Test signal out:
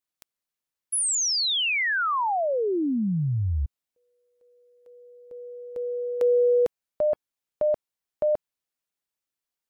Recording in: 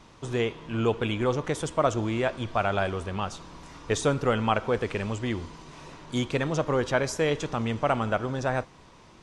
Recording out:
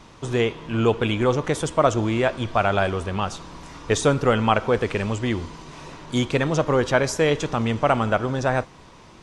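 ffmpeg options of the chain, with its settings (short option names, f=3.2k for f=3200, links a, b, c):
-af "volume=5.5dB" -ar 44100 -c:a aac -b:a 128k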